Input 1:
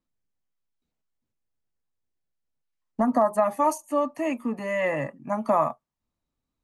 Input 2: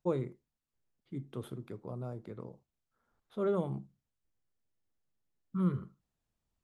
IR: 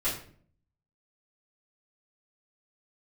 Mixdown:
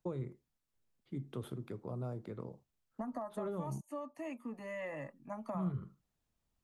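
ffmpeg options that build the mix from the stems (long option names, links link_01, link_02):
-filter_complex "[0:a]volume=-14dB[link_01];[1:a]volume=1dB,asplit=3[link_02][link_03][link_04];[link_02]atrim=end=3.81,asetpts=PTS-STARTPTS,afade=type=out:start_time=3.806:duration=0.004:curve=hsin[link_05];[link_03]atrim=start=3.81:end=4.49,asetpts=PTS-STARTPTS,volume=0[link_06];[link_04]atrim=start=4.49,asetpts=PTS-STARTPTS,afade=type=in:duration=0.004:curve=hsin[link_07];[link_05][link_06][link_07]concat=n=3:v=0:a=1[link_08];[link_01][link_08]amix=inputs=2:normalize=0,acrossover=split=130[link_09][link_10];[link_10]acompressor=threshold=-38dB:ratio=6[link_11];[link_09][link_11]amix=inputs=2:normalize=0"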